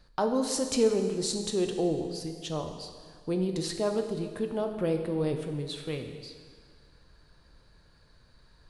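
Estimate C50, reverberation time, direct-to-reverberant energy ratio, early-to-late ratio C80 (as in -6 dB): 7.0 dB, 1.8 s, 5.0 dB, 8.0 dB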